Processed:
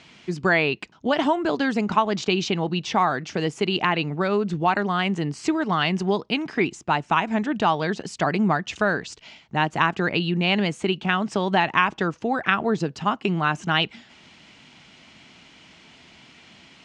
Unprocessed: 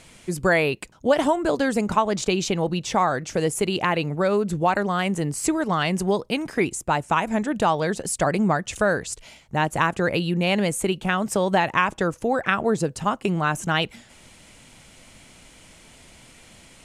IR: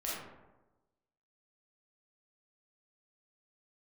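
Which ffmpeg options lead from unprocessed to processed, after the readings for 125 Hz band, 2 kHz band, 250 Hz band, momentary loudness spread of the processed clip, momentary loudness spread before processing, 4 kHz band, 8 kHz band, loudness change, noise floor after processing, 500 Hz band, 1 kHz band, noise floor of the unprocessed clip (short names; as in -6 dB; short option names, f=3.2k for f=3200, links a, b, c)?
-0.5 dB, +1.5 dB, 0.0 dB, 5 LU, 4 LU, +3.0 dB, -10.5 dB, 0.0 dB, -52 dBFS, -2.5 dB, +0.5 dB, -51 dBFS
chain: -af "highpass=110,equalizer=f=110:t=q:w=4:g=-7,equalizer=f=530:t=q:w=4:g=-9,equalizer=f=2.9k:t=q:w=4:g=3,lowpass=f=5.4k:w=0.5412,lowpass=f=5.4k:w=1.3066,volume=1dB"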